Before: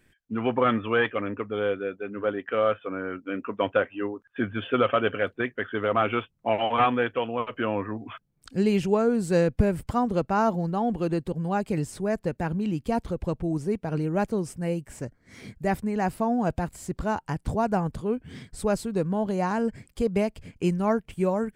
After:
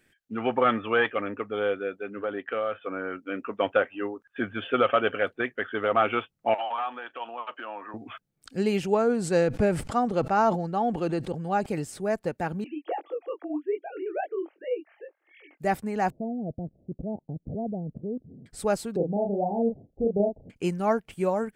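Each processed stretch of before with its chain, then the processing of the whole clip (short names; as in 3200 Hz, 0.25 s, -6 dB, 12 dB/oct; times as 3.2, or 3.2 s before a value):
2.22–2.84 compressor 5:1, threshold -24 dBFS + brick-wall FIR low-pass 4600 Hz
6.54–7.94 compressor, threshold -28 dBFS + speaker cabinet 450–7500 Hz, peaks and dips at 460 Hz -9 dB, 950 Hz +6 dB, 2100 Hz -6 dB, 5100 Hz -5 dB
8.94–11.66 LPF 9000 Hz + sustainer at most 49 dB/s
12.64–15.6 sine-wave speech + steep high-pass 300 Hz 72 dB/oct + chorus 2.5 Hz, delay 20 ms, depth 4.2 ms
16.1–18.46 steep low-pass 660 Hz 48 dB/oct + bell 160 Hz +8 dB 1.9 oct + level quantiser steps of 14 dB
18.96–20.5 steep low-pass 790 Hz 72 dB/oct + doubler 35 ms -3.5 dB
whole clip: low shelf 160 Hz -11 dB; notch 1000 Hz, Q 7.4; dynamic EQ 890 Hz, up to +4 dB, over -41 dBFS, Q 1.5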